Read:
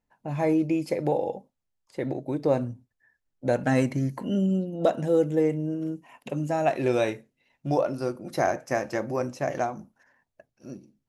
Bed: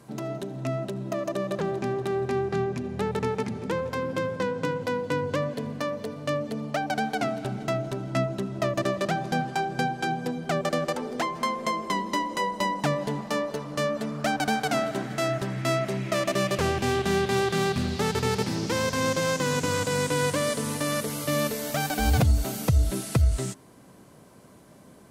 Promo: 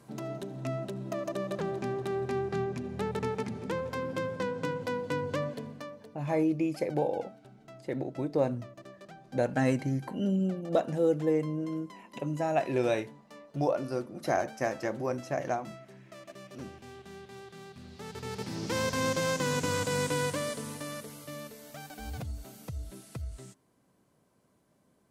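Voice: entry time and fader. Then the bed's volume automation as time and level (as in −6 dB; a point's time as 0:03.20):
5.90 s, −4.0 dB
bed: 0:05.48 −5 dB
0:06.32 −23 dB
0:17.73 −23 dB
0:18.78 −4 dB
0:20.08 −4 dB
0:21.45 −17.5 dB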